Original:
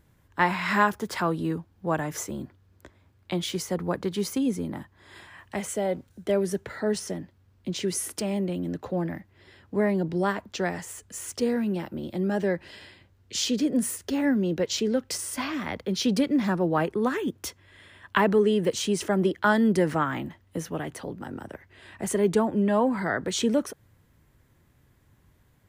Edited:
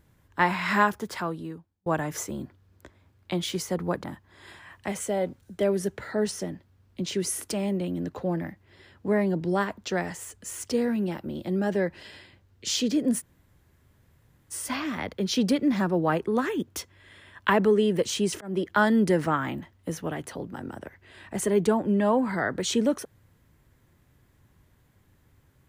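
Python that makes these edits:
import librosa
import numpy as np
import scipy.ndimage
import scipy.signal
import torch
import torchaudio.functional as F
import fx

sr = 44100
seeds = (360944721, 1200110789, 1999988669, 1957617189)

y = fx.edit(x, sr, fx.fade_out_span(start_s=0.82, length_s=1.04),
    fx.cut(start_s=4.04, length_s=0.68),
    fx.room_tone_fill(start_s=13.88, length_s=1.32, crossfade_s=0.04),
    fx.fade_in_span(start_s=19.09, length_s=0.26), tone=tone)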